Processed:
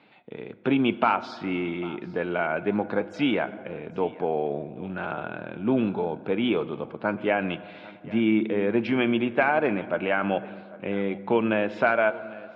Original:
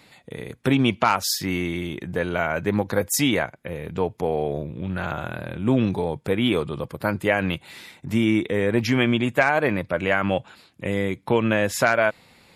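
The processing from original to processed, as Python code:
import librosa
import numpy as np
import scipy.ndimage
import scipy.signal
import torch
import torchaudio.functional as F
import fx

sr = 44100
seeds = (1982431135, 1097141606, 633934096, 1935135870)

y = fx.cabinet(x, sr, low_hz=230.0, low_slope=12, high_hz=2800.0, hz=(520.0, 1100.0, 1900.0), db=(-4, -4, -10))
y = y + 10.0 ** (-20.5 / 20.0) * np.pad(y, (int(799 * sr / 1000.0), 0))[:len(y)]
y = fx.rev_fdn(y, sr, rt60_s=2.3, lf_ratio=0.85, hf_ratio=0.4, size_ms=28.0, drr_db=14.5)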